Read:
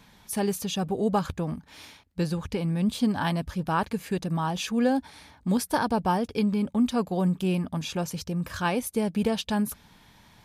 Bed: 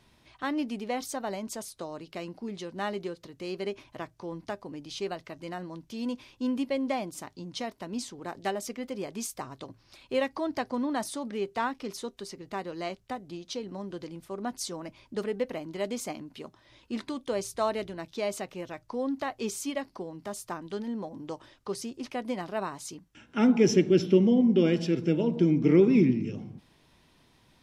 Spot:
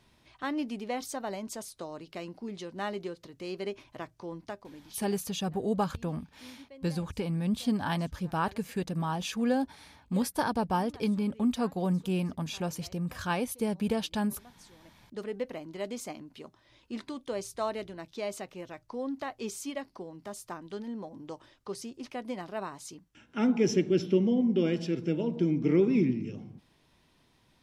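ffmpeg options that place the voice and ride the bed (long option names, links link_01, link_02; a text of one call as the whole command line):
ffmpeg -i stem1.wav -i stem2.wav -filter_complex "[0:a]adelay=4650,volume=-4dB[link_01];[1:a]volume=15dB,afade=type=out:start_time=4.29:duration=0.84:silence=0.112202,afade=type=in:start_time=14.8:duration=0.54:silence=0.141254[link_02];[link_01][link_02]amix=inputs=2:normalize=0" out.wav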